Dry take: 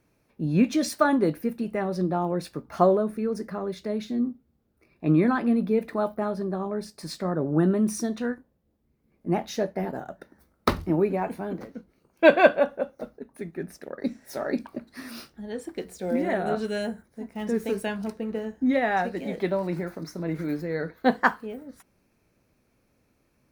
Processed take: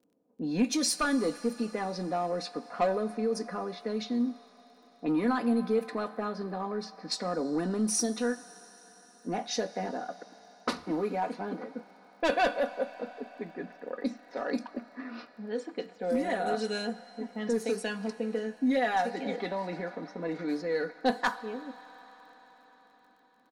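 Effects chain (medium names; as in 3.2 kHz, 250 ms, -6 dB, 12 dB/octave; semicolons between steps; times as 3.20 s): high-pass 270 Hz 12 dB/octave; in parallel at 0 dB: compression, threshold -31 dBFS, peak gain reduction 19.5 dB; on the sum: high-order bell 6.6 kHz +8 dB; saturation -14.5 dBFS, distortion -13 dB; level-controlled noise filter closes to 530 Hz, open at -22.5 dBFS; comb 4.1 ms, depth 67%; level-controlled noise filter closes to 1.3 kHz, open at -18 dBFS; crackle 28 per s -49 dBFS; on a send at -14 dB: resonant low shelf 570 Hz -9 dB, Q 1.5 + reverberation RT60 5.6 s, pre-delay 16 ms; on the sum: trim -6.5 dB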